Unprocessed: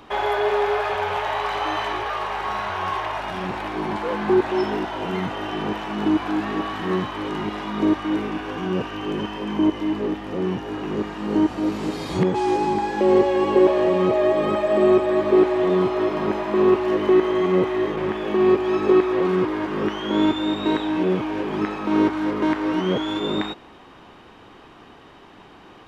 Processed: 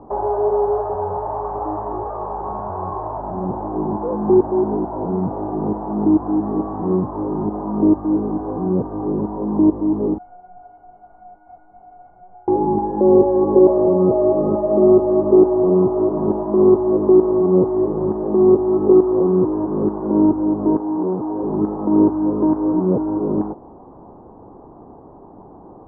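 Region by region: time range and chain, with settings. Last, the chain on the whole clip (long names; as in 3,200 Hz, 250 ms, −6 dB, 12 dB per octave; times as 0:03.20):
0:10.18–0:12.48: sign of each sample alone + tilt shelving filter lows −8.5 dB, about 850 Hz + tuned comb filter 720 Hz, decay 0.3 s, mix 100%
0:20.77–0:21.43: low-shelf EQ 170 Hz −10.5 dB + notch filter 590 Hz, Q 7.3 + saturating transformer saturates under 620 Hz
whole clip: Butterworth low-pass 930 Hz 36 dB per octave; dynamic equaliser 690 Hz, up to −5 dB, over −32 dBFS, Q 1; level +6.5 dB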